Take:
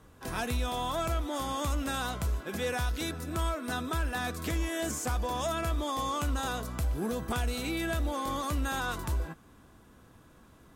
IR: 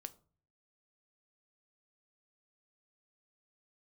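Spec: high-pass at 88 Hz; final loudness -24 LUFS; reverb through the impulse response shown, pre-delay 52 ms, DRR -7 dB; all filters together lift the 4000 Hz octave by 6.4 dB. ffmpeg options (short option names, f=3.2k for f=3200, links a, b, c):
-filter_complex "[0:a]highpass=88,equalizer=f=4k:t=o:g=7.5,asplit=2[a][b];[1:a]atrim=start_sample=2205,adelay=52[c];[b][c]afir=irnorm=-1:irlink=0,volume=12dB[d];[a][d]amix=inputs=2:normalize=0,volume=0.5dB"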